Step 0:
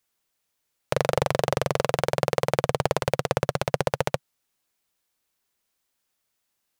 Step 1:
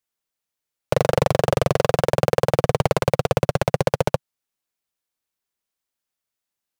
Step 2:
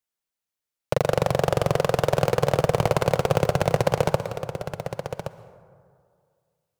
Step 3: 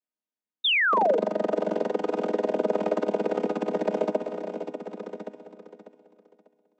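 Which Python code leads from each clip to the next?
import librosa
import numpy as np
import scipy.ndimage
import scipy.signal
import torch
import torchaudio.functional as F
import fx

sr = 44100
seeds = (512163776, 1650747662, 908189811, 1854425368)

y1 = fx.leveller(x, sr, passes=3)
y1 = y1 * 10.0 ** (-2.0 / 20.0)
y2 = fx.rider(y1, sr, range_db=10, speed_s=0.5)
y2 = y2 + 10.0 ** (-10.0 / 20.0) * np.pad(y2, (int(1121 * sr / 1000.0), 0))[:len(y2)]
y2 = fx.rev_plate(y2, sr, seeds[0], rt60_s=2.1, hf_ratio=0.4, predelay_ms=105, drr_db=13.5)
y2 = y2 * 10.0 ** (-2.0 / 20.0)
y3 = fx.chord_vocoder(y2, sr, chord='minor triad', root=56)
y3 = fx.echo_feedback(y3, sr, ms=595, feedback_pct=26, wet_db=-10)
y3 = fx.spec_paint(y3, sr, seeds[1], shape='fall', start_s=0.64, length_s=0.54, low_hz=430.0, high_hz=3800.0, level_db=-18.0)
y3 = y3 * 10.0 ** (-4.0 / 20.0)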